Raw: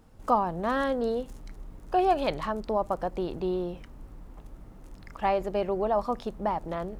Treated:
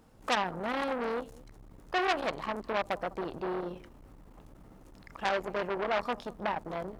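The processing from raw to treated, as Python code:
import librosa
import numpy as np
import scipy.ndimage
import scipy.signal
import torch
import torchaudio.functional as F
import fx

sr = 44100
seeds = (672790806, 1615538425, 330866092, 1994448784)

y = fx.low_shelf(x, sr, hz=97.0, db=-9.5)
y = y + 10.0 ** (-22.5 / 20.0) * np.pad(y, (int(201 * sr / 1000.0), 0))[:len(y)]
y = fx.transformer_sat(y, sr, knee_hz=3000.0)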